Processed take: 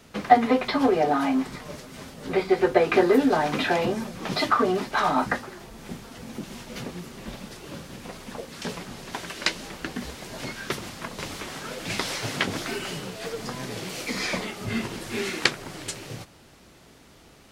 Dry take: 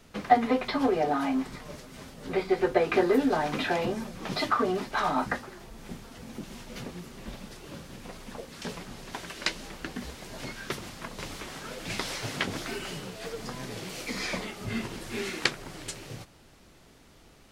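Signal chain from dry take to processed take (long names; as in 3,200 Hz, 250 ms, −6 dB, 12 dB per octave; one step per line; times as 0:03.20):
high-pass filter 61 Hz 6 dB per octave
level +4.5 dB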